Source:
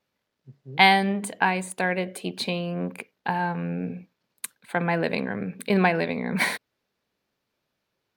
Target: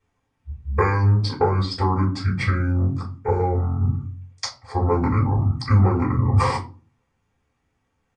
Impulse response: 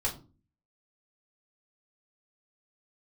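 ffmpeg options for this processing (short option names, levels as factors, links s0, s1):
-filter_complex "[0:a]acompressor=threshold=0.0794:ratio=12,asetrate=22696,aresample=44100,atempo=1.94306[s0];[1:a]atrim=start_sample=2205[s1];[s0][s1]afir=irnorm=-1:irlink=0,volume=1.12"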